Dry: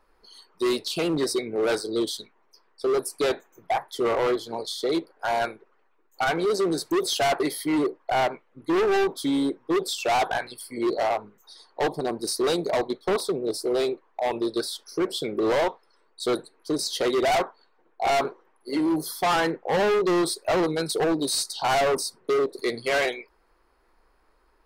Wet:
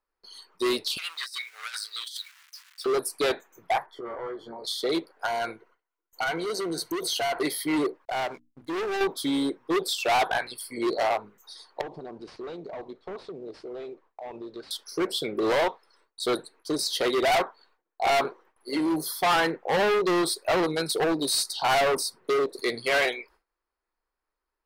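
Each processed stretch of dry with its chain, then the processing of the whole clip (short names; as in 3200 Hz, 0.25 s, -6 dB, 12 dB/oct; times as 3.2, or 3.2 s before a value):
0.97–2.86 zero-crossing step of -47 dBFS + HPF 1400 Hz 24 dB/oct + negative-ratio compressor -36 dBFS, ratio -0.5
3.86–4.64 compressor 10:1, threshold -34 dBFS + polynomial smoothing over 41 samples + doubler 14 ms -6 dB
5.26–7.41 ripple EQ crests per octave 1.9, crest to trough 7 dB + compressor 4:1, threshold -26 dBFS
8.05–9.01 backlash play -47.5 dBFS + notches 60/120/180/240/300 Hz + compressor 2:1, threshold -32 dBFS
11.81–14.71 CVSD 64 kbps + compressor 4:1, threshold -34 dBFS + tape spacing loss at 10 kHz 35 dB
whole clip: tilt shelf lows -3 dB, about 880 Hz; gate with hold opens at -52 dBFS; dynamic EQ 6900 Hz, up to -5 dB, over -42 dBFS, Q 1.4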